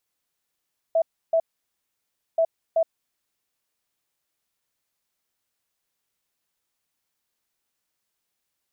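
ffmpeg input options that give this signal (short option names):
-f lavfi -i "aevalsrc='0.15*sin(2*PI*656*t)*clip(min(mod(mod(t,1.43),0.38),0.07-mod(mod(t,1.43),0.38))/0.005,0,1)*lt(mod(t,1.43),0.76)':d=2.86:s=44100"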